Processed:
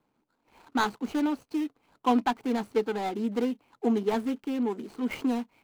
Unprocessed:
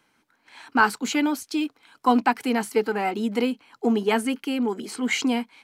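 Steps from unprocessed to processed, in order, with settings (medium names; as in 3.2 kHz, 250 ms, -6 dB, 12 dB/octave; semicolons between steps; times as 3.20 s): median filter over 25 samples; trim -3.5 dB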